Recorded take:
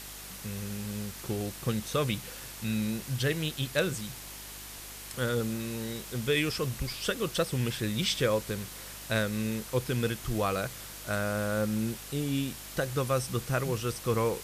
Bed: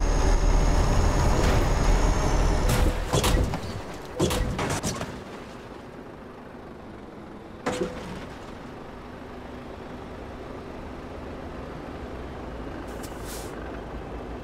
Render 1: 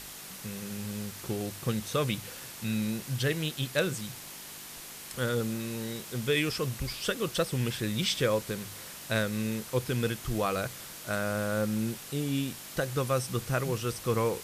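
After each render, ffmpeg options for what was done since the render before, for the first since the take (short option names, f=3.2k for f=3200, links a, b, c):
-af "bandreject=f=50:t=h:w=4,bandreject=f=100:t=h:w=4"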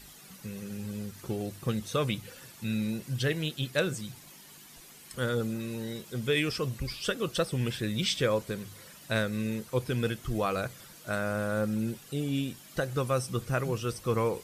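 -af "afftdn=nr=11:nf=-45"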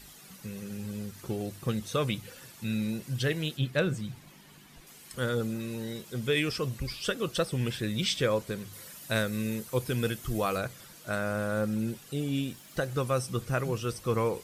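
-filter_complex "[0:a]asettb=1/sr,asplit=3[a][b][c];[a]atrim=end=3.574[d];[b]atrim=start=3.57:end=4.87,asetpts=PTS-STARTPTS,afade=t=in:d=0.004:c=qsin,afade=t=out:st=1.296:d=0.004:c=qsin,bass=f=250:g=5,treble=f=4k:g=-8[e];[c]atrim=start=4.866[f];[d][e]acrossfade=d=0.004:c1=hsin:c2=qsin[g];[g][f]acrossfade=d=0.004:c1=qsin:c2=hsin,asettb=1/sr,asplit=3[h][i][j];[h]atrim=end=8.734[k];[i]atrim=start=8.73:end=10.58,asetpts=PTS-STARTPTS,afade=t=in:d=0.004:c=qsin,afade=t=out:st=1.846:d=0.004:c=qsin,highshelf=f=7.7k:g=9[l];[j]atrim=start=10.576[m];[k][l]acrossfade=d=0.004:c1=hsin:c2=qsin[n];[n][m]acrossfade=d=0.004:c1=qsin:c2=hsin,asettb=1/sr,asplit=3[o][p][q];[o]atrim=end=12.144[r];[p]atrim=start=12.14:end=13.04,asetpts=PTS-STARTPTS,afade=t=in:d=0.004:c=qsin,afade=t=out:st=0.896:d=0.004:c=qsin,aeval=exprs='val(0)*gte(abs(val(0)),0.00168)':c=same[s];[q]atrim=start=13.036[t];[r][s]acrossfade=d=0.004:c1=hsin:c2=qsin[u];[u][t]acrossfade=d=0.004:c1=qsin:c2=hsin"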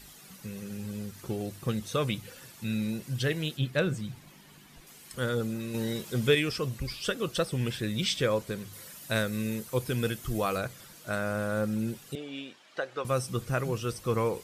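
-filter_complex "[0:a]asettb=1/sr,asplit=3[a][b][c];[a]atrim=end=5.744[d];[b]atrim=start=5.74:end=6.35,asetpts=PTS-STARTPTS,afade=t=in:d=0.004:c=qsin,afade=t=out:st=0.606:d=0.004:c=qsin,acontrast=26[e];[c]atrim=start=6.346[f];[d][e]acrossfade=d=0.004:c1=hsin:c2=qsin[g];[g][f]acrossfade=d=0.004:c1=qsin:c2=hsin,asettb=1/sr,asplit=3[h][i][j];[h]atrim=end=12.154[k];[i]atrim=start=12.15:end=13.05,asetpts=PTS-STARTPTS,afade=t=in:d=0.004:c=qsin,afade=t=out:st=0.896:d=0.004:c=qsin,highpass=470,lowpass=3.7k[l];[j]atrim=start=13.046[m];[k][l]acrossfade=d=0.004:c1=hsin:c2=qsin[n];[n][m]acrossfade=d=0.004:c1=qsin:c2=hsin"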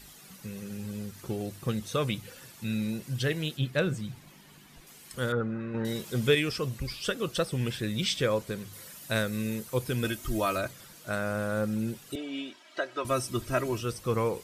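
-filter_complex "[0:a]asettb=1/sr,asplit=3[a][b][c];[a]atrim=end=5.324[d];[b]atrim=start=5.32:end=5.85,asetpts=PTS-STARTPTS,afade=t=in:d=0.004:c=qsin,afade=t=out:st=0.526:d=0.004:c=qsin,lowpass=f=1.5k:t=q:w=2.2[e];[c]atrim=start=5.846[f];[d][e]acrossfade=d=0.004:c1=hsin:c2=qsin[g];[g][f]acrossfade=d=0.004:c1=qsin:c2=hsin,asettb=1/sr,asplit=3[h][i][j];[h]atrim=end=10.044[k];[i]atrim=start=10.04:end=10.71,asetpts=PTS-STARTPTS,afade=t=in:d=0.004:c=qsin,afade=t=out:st=0.666:d=0.004:c=qsin,aecho=1:1:3.2:0.65,atrim=end_sample=29547[l];[j]atrim=start=10.706[m];[k][l]acrossfade=d=0.004:c1=hsin:c2=qsin[n];[n][m]acrossfade=d=0.004:c1=qsin:c2=hsin,asettb=1/sr,asplit=3[o][p][q];[o]atrim=end=12.104[r];[p]atrim=start=12.1:end=13.81,asetpts=PTS-STARTPTS,afade=t=in:d=0.004:c=qsin,afade=t=out:st=1.706:d=0.004:c=qsin,aecho=1:1:3.1:0.9,atrim=end_sample=75411[s];[q]atrim=start=13.806[t];[r][s]acrossfade=d=0.004:c1=hsin:c2=qsin[u];[u][t]acrossfade=d=0.004:c1=qsin:c2=hsin"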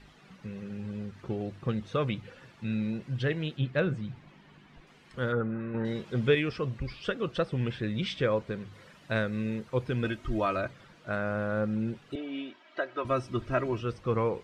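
-af "lowpass=2.6k"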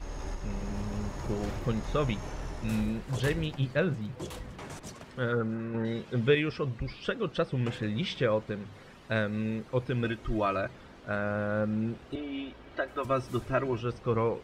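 -filter_complex "[1:a]volume=-15.5dB[a];[0:a][a]amix=inputs=2:normalize=0"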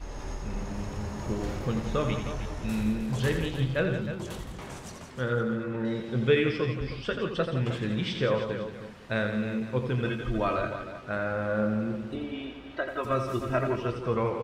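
-filter_complex "[0:a]asplit=2[a][b];[b]adelay=23,volume=-11dB[c];[a][c]amix=inputs=2:normalize=0,aecho=1:1:85|167|311|509:0.422|0.335|0.282|0.112"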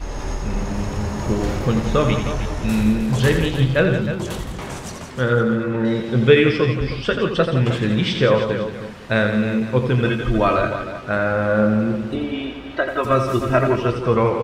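-af "volume=10.5dB,alimiter=limit=-2dB:level=0:latency=1"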